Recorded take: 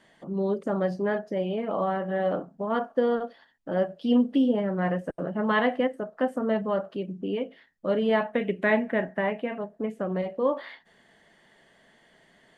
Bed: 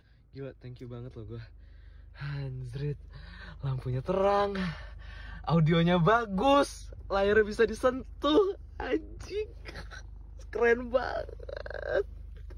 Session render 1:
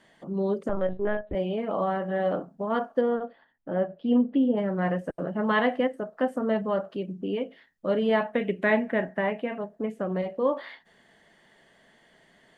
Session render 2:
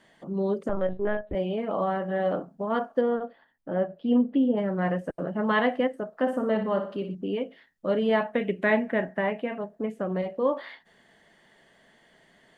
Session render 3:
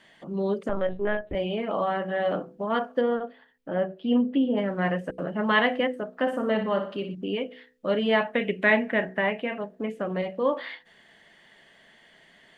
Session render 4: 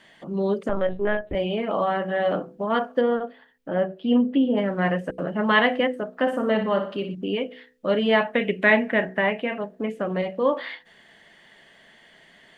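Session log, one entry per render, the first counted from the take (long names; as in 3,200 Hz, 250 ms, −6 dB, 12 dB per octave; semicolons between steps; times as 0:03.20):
0:00.69–0:01.35: linear-prediction vocoder at 8 kHz pitch kept; 0:03.01–0:04.57: high-frequency loss of the air 410 metres
0:06.14–0:07.15: flutter between parallel walls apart 10.3 metres, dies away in 0.44 s
parametric band 2,700 Hz +7.5 dB 1.5 octaves; hum removal 62.84 Hz, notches 8
level +3 dB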